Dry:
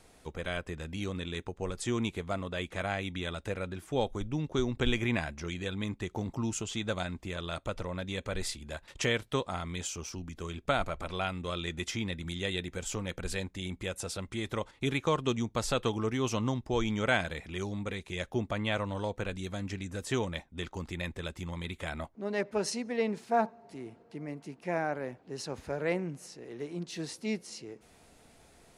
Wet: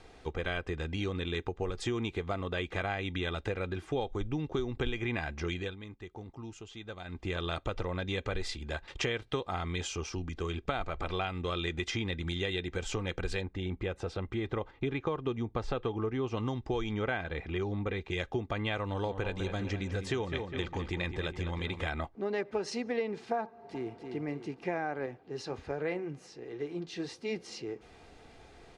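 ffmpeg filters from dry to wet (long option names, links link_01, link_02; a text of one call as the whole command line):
ffmpeg -i in.wav -filter_complex "[0:a]asettb=1/sr,asplit=3[link_01][link_02][link_03];[link_01]atrim=end=13.414[link_04];[link_02]atrim=start=13.41:end=16.37,asetpts=PTS-STARTPTS,afade=type=in:duration=0.004:curve=qsin,afade=type=out:start_time=2.956:duration=0.004:curve=qsin,lowpass=frequency=1500:poles=1[link_05];[link_03]atrim=start=16.366[link_06];[link_04][link_05]acrossfade=duration=0.004:curve1=hsin:curve2=qsin[link_07];[link_07][link_06]acrossfade=duration=0.004:curve1=qsin:curve2=hsin,asettb=1/sr,asplit=3[link_08][link_09][link_10];[link_08]atrim=end=16.934[link_11];[link_09]atrim=start=16.93:end=18.11,asetpts=PTS-STARTPTS,afade=type=in:duration=0.004:curve=qsin,afade=type=out:start_time=1.176:duration=0.004:curve=qsin,aemphasis=mode=reproduction:type=75fm[link_12];[link_10]atrim=start=18.106[link_13];[link_11][link_12]acrossfade=duration=0.004:curve1=hsin:curve2=qsin[link_14];[link_14][link_13]acrossfade=duration=0.004:curve1=qsin:curve2=hsin,asettb=1/sr,asplit=3[link_15][link_16][link_17];[link_15]atrim=end=18.854[link_18];[link_16]atrim=start=18.85:end=21.87,asetpts=PTS-STARTPTS,afade=type=in:duration=0.004:curve=qsin,afade=type=out:start_time=3.016:duration=0.004:curve=qsin,asplit=2[link_19][link_20];[link_20]adelay=203,lowpass=frequency=3200:poles=1,volume=-9dB,asplit=2[link_21][link_22];[link_22]adelay=203,lowpass=frequency=3200:poles=1,volume=0.51,asplit=2[link_23][link_24];[link_24]adelay=203,lowpass=frequency=3200:poles=1,volume=0.51,asplit=2[link_25][link_26];[link_26]adelay=203,lowpass=frequency=3200:poles=1,volume=0.51,asplit=2[link_27][link_28];[link_28]adelay=203,lowpass=frequency=3200:poles=1,volume=0.51,asplit=2[link_29][link_30];[link_30]adelay=203,lowpass=frequency=3200:poles=1,volume=0.51[link_31];[link_19][link_21][link_23][link_25][link_27][link_29][link_31]amix=inputs=7:normalize=0,atrim=end_sample=133182[link_32];[link_17]atrim=start=21.866[link_33];[link_18][link_32]acrossfade=duration=0.004:curve1=hsin:curve2=qsin[link_34];[link_34][link_33]acrossfade=duration=0.004:curve1=qsin:curve2=hsin,asplit=2[link_35][link_36];[link_36]afade=type=in:start_time=23.45:duration=0.01,afade=type=out:start_time=24.01:duration=0.01,aecho=0:1:290|580|870|1160|1450:0.530884|0.238898|0.107504|0.0483768|0.0217696[link_37];[link_35][link_37]amix=inputs=2:normalize=0,asettb=1/sr,asplit=3[link_38][link_39][link_40];[link_38]atrim=end=25.064[link_41];[link_39]atrim=start=25.06:end=27.36,asetpts=PTS-STARTPTS,afade=type=in:duration=0.004:curve=qsin,afade=type=out:start_time=2.296:duration=0.004:curve=qsin,flanger=delay=6:depth=3.9:regen=-62:speed=1.3:shape=triangular[link_42];[link_40]atrim=start=27.356[link_43];[link_41][link_42]acrossfade=duration=0.004:curve1=hsin:curve2=qsin[link_44];[link_44][link_43]acrossfade=duration=0.004:curve1=qsin:curve2=hsin,asplit=3[link_45][link_46][link_47];[link_45]atrim=end=5.76,asetpts=PTS-STARTPTS,afade=type=out:start_time=5.52:duration=0.24:silence=0.188365[link_48];[link_46]atrim=start=5.76:end=7.04,asetpts=PTS-STARTPTS,volume=-14.5dB[link_49];[link_47]atrim=start=7.04,asetpts=PTS-STARTPTS,afade=type=in:duration=0.24:silence=0.188365[link_50];[link_48][link_49][link_50]concat=n=3:v=0:a=1,lowpass=4400,aecho=1:1:2.5:0.36,acompressor=threshold=-34dB:ratio=6,volume=4.5dB" out.wav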